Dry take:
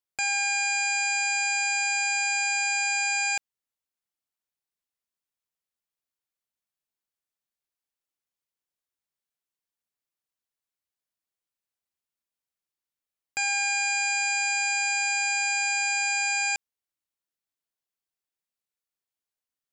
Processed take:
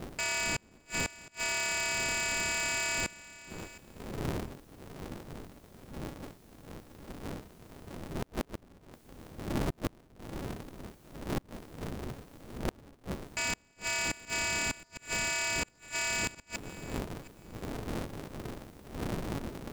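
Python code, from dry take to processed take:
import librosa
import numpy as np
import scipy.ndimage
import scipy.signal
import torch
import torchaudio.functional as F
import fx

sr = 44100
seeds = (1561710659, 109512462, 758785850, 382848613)

p1 = fx.dmg_wind(x, sr, seeds[0], corner_hz=220.0, level_db=-28.0)
p2 = fx.quant_dither(p1, sr, seeds[1], bits=10, dither='triangular')
p3 = fx.gate_flip(p2, sr, shuts_db=-15.0, range_db=-36)
p4 = p3 + fx.echo_feedback(p3, sr, ms=715, feedback_pct=17, wet_db=-18.5, dry=0)
p5 = p4 * np.sign(np.sin(2.0 * np.pi * 140.0 * np.arange(len(p4)) / sr))
y = p5 * 10.0 ** (-6.0 / 20.0)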